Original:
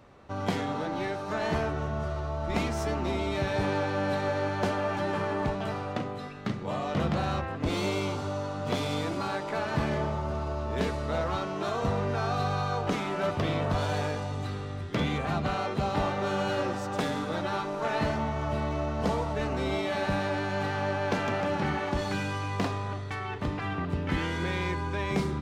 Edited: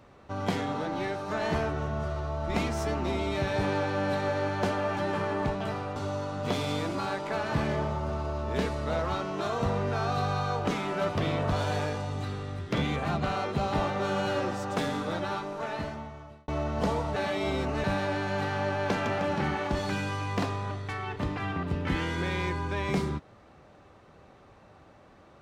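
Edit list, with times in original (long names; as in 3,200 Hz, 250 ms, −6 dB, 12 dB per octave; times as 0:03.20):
0:05.96–0:08.18: remove
0:17.31–0:18.70: fade out
0:19.38–0:20.06: reverse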